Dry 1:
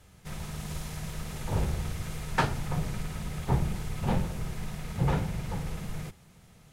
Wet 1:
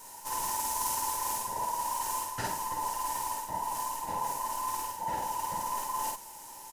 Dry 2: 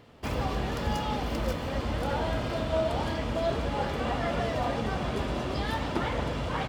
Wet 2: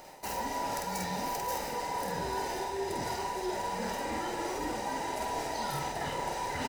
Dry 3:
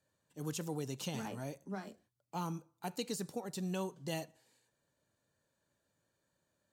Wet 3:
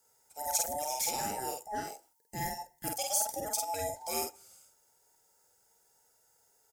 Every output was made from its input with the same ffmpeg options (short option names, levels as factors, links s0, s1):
-filter_complex "[0:a]afftfilt=real='real(if(between(b,1,1008),(2*floor((b-1)/48)+1)*48-b,b),0)':imag='imag(if(between(b,1,1008),(2*floor((b-1)/48)+1)*48-b,b),0)*if(between(b,1,1008),-1,1)':win_size=2048:overlap=0.75,areverse,acompressor=threshold=0.0141:ratio=10,areverse,aexciter=amount=4.4:drive=5.1:freq=5100,asplit=2[s0][s1];[s1]adelay=49,volume=0.75[s2];[s0][s2]amix=inputs=2:normalize=0,volume=1.5"